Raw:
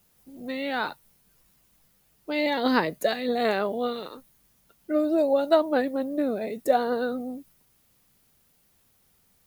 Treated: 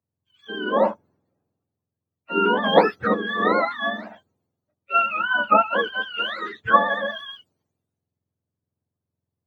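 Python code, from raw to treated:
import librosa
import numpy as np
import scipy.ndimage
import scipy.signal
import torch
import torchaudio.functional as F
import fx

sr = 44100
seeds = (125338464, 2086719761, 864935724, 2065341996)

p1 = fx.octave_mirror(x, sr, pivot_hz=910.0)
p2 = scipy.signal.sosfilt(scipy.signal.butter(2, 230.0, 'highpass', fs=sr, output='sos'), p1)
p3 = fx.peak_eq(p2, sr, hz=600.0, db=7.5, octaves=2.5)
p4 = fx.notch(p3, sr, hz=5500.0, q=18.0)
p5 = fx.rider(p4, sr, range_db=10, speed_s=0.5)
p6 = p4 + (p5 * 10.0 ** (1.5 / 20.0))
p7 = fx.peak_eq(p6, sr, hz=4300.0, db=-6.0, octaves=2.0)
p8 = fx.band_widen(p7, sr, depth_pct=70)
y = p8 * 10.0 ** (-3.5 / 20.0)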